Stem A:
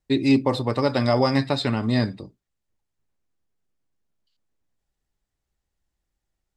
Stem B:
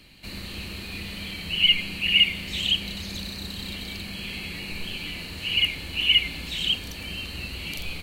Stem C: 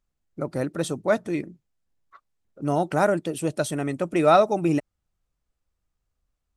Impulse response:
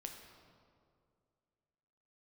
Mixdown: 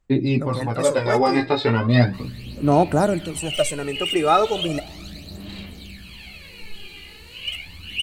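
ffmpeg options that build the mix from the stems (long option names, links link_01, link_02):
-filter_complex "[0:a]flanger=delay=16:depth=3.1:speed=0.43,dynaudnorm=framelen=270:gausssize=11:maxgain=11.5dB,lowpass=3500,volume=-0.5dB,asplit=2[link_01][link_02];[link_02]volume=-14.5dB[link_03];[1:a]flanger=delay=9.7:depth=7.1:regen=40:speed=0.83:shape=sinusoidal,asoftclip=type=hard:threshold=-20dB,adelay=1900,volume=-4.5dB[link_04];[2:a]equalizer=frequency=7700:width_type=o:width=0.35:gain=8.5,volume=-2.5dB,asplit=2[link_05][link_06];[link_06]volume=-8.5dB[link_07];[3:a]atrim=start_sample=2205[link_08];[link_03][link_07]amix=inputs=2:normalize=0[link_09];[link_09][link_08]afir=irnorm=-1:irlink=0[link_10];[link_01][link_04][link_05][link_10]amix=inputs=4:normalize=0,aphaser=in_gain=1:out_gain=1:delay=2.5:decay=0.62:speed=0.36:type=sinusoidal"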